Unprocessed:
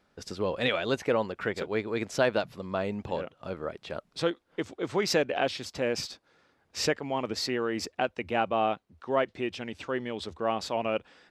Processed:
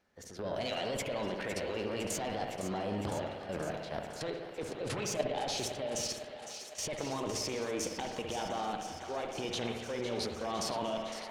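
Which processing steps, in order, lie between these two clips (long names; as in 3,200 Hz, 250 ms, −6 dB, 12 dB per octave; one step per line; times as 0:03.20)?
one-sided soft clipper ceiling −17.5 dBFS
dynamic equaliser 1,200 Hz, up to −6 dB, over −45 dBFS, Q 1.8
transient designer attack −5 dB, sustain +7 dB
output level in coarse steps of 13 dB
formants moved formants +3 semitones
feedback echo with a high-pass in the loop 508 ms, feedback 78%, high-pass 440 Hz, level −10.5 dB
on a send at −3 dB: convolution reverb RT60 1.3 s, pre-delay 59 ms
on the sum: level +2 dB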